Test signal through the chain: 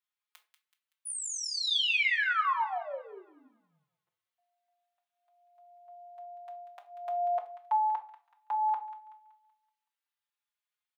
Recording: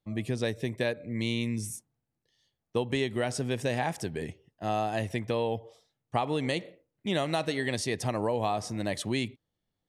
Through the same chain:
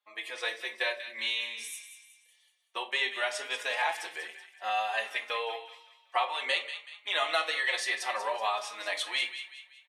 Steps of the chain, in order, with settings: high-pass 570 Hz 24 dB/octave; high-order bell 1.9 kHz +8.5 dB 2.3 oct; on a send: feedback echo behind a high-pass 189 ms, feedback 41%, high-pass 1.5 kHz, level -10 dB; on the sum: simulated room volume 250 m³, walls furnished, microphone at 0.91 m; endless flanger 4.4 ms +0.57 Hz

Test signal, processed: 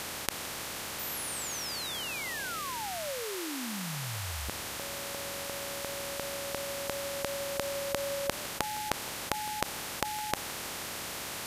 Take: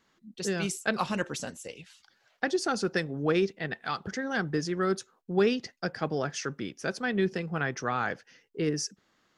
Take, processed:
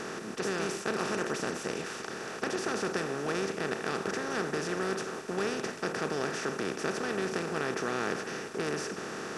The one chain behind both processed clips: spectral levelling over time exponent 0.2; modulated delay 161 ms, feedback 59%, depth 112 cents, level -17.5 dB; trim -12.5 dB

